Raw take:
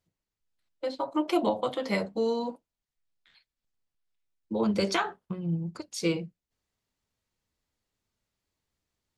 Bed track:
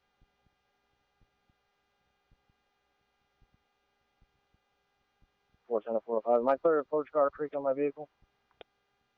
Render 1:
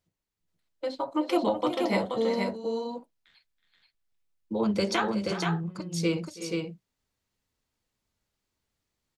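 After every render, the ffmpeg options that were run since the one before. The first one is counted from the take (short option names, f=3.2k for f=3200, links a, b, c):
-af "aecho=1:1:326|371|479:0.106|0.237|0.631"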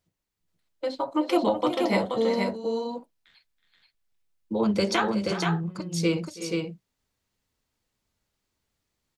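-af "volume=2.5dB"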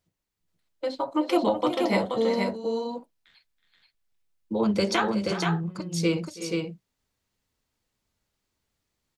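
-af anull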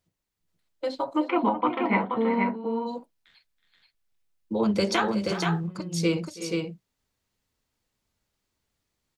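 -filter_complex "[0:a]asplit=3[a][b][c];[a]afade=t=out:st=1.27:d=0.02[d];[b]highpass=160,equalizer=f=240:t=q:w=4:g=6,equalizer=f=340:t=q:w=4:g=-3,equalizer=f=570:t=q:w=4:g=-10,equalizer=f=980:t=q:w=4:g=7,equalizer=f=1.4k:t=q:w=4:g=4,equalizer=f=2.3k:t=q:w=4:g=6,lowpass=f=2.5k:w=0.5412,lowpass=f=2.5k:w=1.3066,afade=t=in:st=1.27:d=0.02,afade=t=out:st=2.86:d=0.02[e];[c]afade=t=in:st=2.86:d=0.02[f];[d][e][f]amix=inputs=3:normalize=0,asettb=1/sr,asplit=3[g][h][i];[g]atrim=end=5.094[j];[h]atrim=start=5.09:end=5.67,asetpts=PTS-STARTPTS,afade=t=in:d=0.004:c=qsin,afade=t=out:st=0.576:d=0.004:c=qsin,aeval=exprs='sgn(val(0))*max(abs(val(0))-0.00119,0)':c=same[k];[i]atrim=start=5.666[l];[j][k]acrossfade=d=0.004:c1=hsin:c2=qsin[m];[m][l]acrossfade=d=0.004:c1=qsin:c2=hsin"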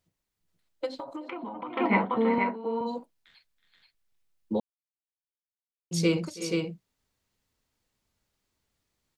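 -filter_complex "[0:a]asplit=3[a][b][c];[a]afade=t=out:st=0.85:d=0.02[d];[b]acompressor=threshold=-33dB:ratio=16:attack=3.2:release=140:knee=1:detection=peak,afade=t=in:st=0.85:d=0.02,afade=t=out:st=1.75:d=0.02[e];[c]afade=t=in:st=1.75:d=0.02[f];[d][e][f]amix=inputs=3:normalize=0,asettb=1/sr,asplit=3[g][h][i];[g]atrim=end=2.384[j];[h]atrim=start=2.38:end=2.81,asetpts=PTS-STARTPTS,afade=t=in:d=0.004:c=qsin,afade=t=out:st=0.426:d=0.004:c=qsin,highpass=290[k];[i]atrim=start=2.806[l];[j][k]acrossfade=d=0.004:c1=hsin:c2=qsin[m];[m][l]acrossfade=d=0.004:c1=qsin:c2=hsin,asplit=3[n][o][p];[n]atrim=end=4.6,asetpts=PTS-STARTPTS,afade=t=out:st=4.596:d=0.004:c=hsin[q];[o]atrim=start=4.6:end=5.91,asetpts=PTS-STARTPTS,volume=0[r];[p]atrim=start=5.91,asetpts=PTS-STARTPTS,afade=t=in:d=0.004:c=hsin[s];[q][r][s]concat=n=3:v=0:a=1"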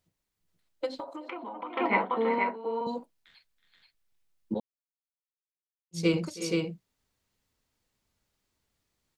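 -filter_complex "[0:a]asettb=1/sr,asplit=3[a][b][c];[a]atrim=end=1.044[d];[b]atrim=start=1.04:end=2.87,asetpts=PTS-STARTPTS,afade=t=in:d=0.004:c=qsin,afade=t=out:st=1.826:d=0.004:c=qsin,highpass=330[e];[c]atrim=start=2.866[f];[d][e]acrossfade=d=0.004:c1=hsin:c2=qsin[g];[g][f]acrossfade=d=0.004:c1=qsin:c2=hsin,asettb=1/sr,asplit=3[h][i][j];[h]atrim=end=4.544[k];[i]atrim=start=4.54:end=6.14,asetpts=PTS-STARTPTS,afade=t=in:d=0.004:c=qsin,afade=t=out:st=1.596:d=0.004:c=qsin,agate=range=-33dB:threshold=-22dB:ratio=3:release=100:detection=peak[l];[j]atrim=start=6.136[m];[k][l]acrossfade=d=0.004:c1=hsin:c2=qsin[n];[n][m]acrossfade=d=0.004:c1=qsin:c2=hsin"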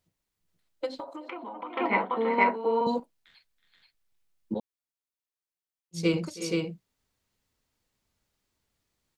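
-filter_complex "[0:a]asettb=1/sr,asplit=3[a][b][c];[a]atrim=end=2.384[d];[b]atrim=start=2.38:end=3,asetpts=PTS-STARTPTS,afade=t=in:d=0.004:c=qsin,afade=t=out:st=0.616:d=0.004:c=qsin,acontrast=58[e];[c]atrim=start=2.996[f];[d][e]acrossfade=d=0.004:c1=hsin:c2=qsin[g];[g][f]acrossfade=d=0.004:c1=qsin:c2=hsin"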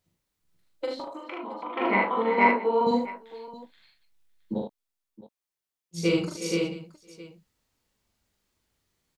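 -filter_complex "[0:a]asplit=2[a][b];[b]adelay=20,volume=-14dB[c];[a][c]amix=inputs=2:normalize=0,asplit=2[d][e];[e]aecho=0:1:41|75|668:0.708|0.596|0.15[f];[d][f]amix=inputs=2:normalize=0"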